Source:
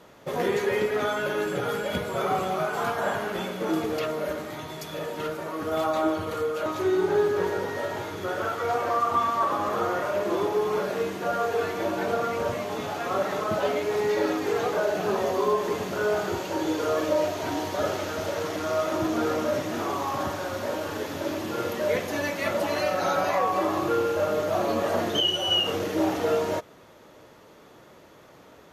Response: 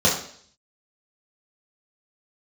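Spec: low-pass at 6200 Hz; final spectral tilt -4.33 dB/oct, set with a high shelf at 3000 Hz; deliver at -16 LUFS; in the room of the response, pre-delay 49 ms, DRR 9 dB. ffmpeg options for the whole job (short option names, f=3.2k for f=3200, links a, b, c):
-filter_complex "[0:a]lowpass=6.2k,highshelf=f=3k:g=4.5,asplit=2[a][b];[1:a]atrim=start_sample=2205,adelay=49[c];[b][c]afir=irnorm=-1:irlink=0,volume=-27dB[d];[a][d]amix=inputs=2:normalize=0,volume=10dB"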